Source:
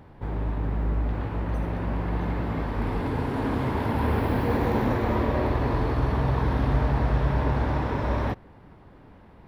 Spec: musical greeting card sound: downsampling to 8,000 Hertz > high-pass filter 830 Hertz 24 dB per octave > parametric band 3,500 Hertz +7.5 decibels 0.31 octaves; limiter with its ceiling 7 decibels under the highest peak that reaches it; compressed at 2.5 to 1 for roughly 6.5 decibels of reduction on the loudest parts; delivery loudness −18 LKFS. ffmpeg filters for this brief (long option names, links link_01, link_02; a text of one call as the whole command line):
ffmpeg -i in.wav -af "acompressor=threshold=-28dB:ratio=2.5,alimiter=level_in=0.5dB:limit=-24dB:level=0:latency=1,volume=-0.5dB,aresample=8000,aresample=44100,highpass=frequency=830:width=0.5412,highpass=frequency=830:width=1.3066,equalizer=frequency=3500:width_type=o:width=0.31:gain=7.5,volume=25dB" out.wav